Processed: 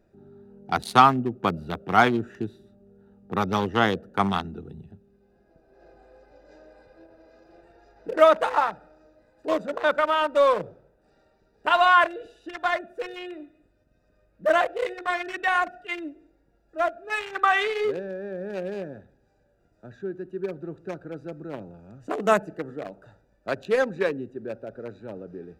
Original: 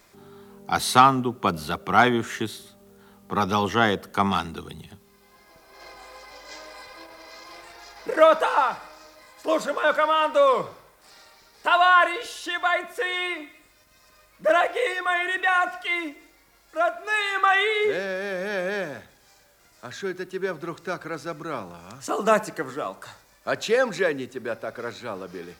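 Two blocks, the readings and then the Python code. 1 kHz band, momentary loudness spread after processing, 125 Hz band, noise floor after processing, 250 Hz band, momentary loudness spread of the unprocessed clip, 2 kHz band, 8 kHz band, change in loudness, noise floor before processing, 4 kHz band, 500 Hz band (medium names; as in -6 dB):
-1.0 dB, 20 LU, 0.0 dB, -66 dBFS, -0.5 dB, 20 LU, -3.0 dB, no reading, -1.0 dB, -58 dBFS, -4.0 dB, -1.0 dB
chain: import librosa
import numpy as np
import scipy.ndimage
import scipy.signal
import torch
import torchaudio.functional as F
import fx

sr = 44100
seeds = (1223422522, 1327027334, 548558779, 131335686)

y = fx.wiener(x, sr, points=41)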